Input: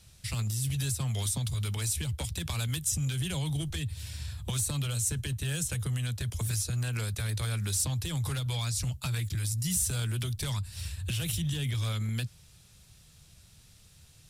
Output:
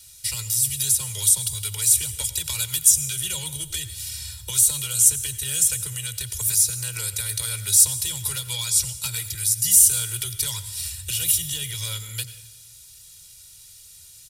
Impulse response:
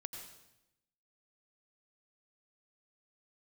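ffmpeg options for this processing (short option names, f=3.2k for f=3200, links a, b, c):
-filter_complex "[0:a]aecho=1:1:2.1:1,crystalizer=i=9.5:c=0,asplit=2[a][b];[1:a]atrim=start_sample=2205[c];[b][c]afir=irnorm=-1:irlink=0,volume=-1dB[d];[a][d]amix=inputs=2:normalize=0,volume=-12.5dB"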